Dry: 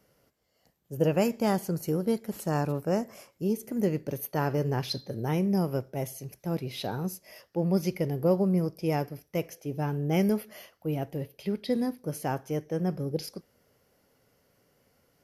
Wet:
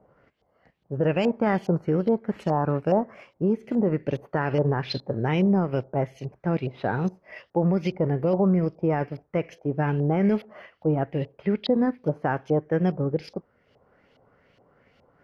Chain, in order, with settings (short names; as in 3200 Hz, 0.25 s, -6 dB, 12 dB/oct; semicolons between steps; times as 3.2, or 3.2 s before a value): limiter -20.5 dBFS, peak gain reduction 7.5 dB; transient shaper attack +1 dB, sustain -5 dB; LFO low-pass saw up 2.4 Hz 720–3600 Hz; gain +6 dB